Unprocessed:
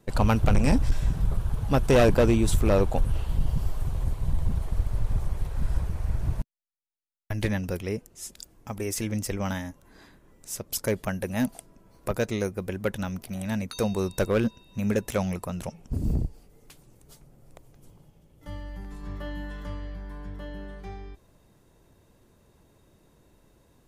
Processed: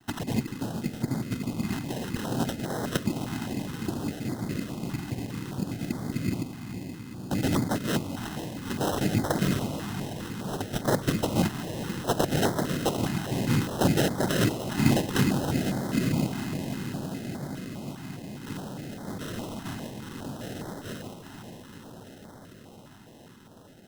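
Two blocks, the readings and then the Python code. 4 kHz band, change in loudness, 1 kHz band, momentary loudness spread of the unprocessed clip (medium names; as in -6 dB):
+5.0 dB, -2.0 dB, +1.5 dB, 18 LU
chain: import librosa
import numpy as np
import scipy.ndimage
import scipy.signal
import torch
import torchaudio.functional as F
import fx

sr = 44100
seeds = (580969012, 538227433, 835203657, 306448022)

y = fx.over_compress(x, sr, threshold_db=-24.0, ratio=-0.5)
y = fx.noise_vocoder(y, sr, seeds[0], bands=4)
y = fx.echo_diffused(y, sr, ms=465, feedback_pct=79, wet_db=-9)
y = fx.sample_hold(y, sr, seeds[1], rate_hz=2300.0, jitter_pct=0)
y = fx.filter_held_notch(y, sr, hz=4.9, low_hz=520.0, high_hz=2700.0)
y = y * 10.0 ** (2.5 / 20.0)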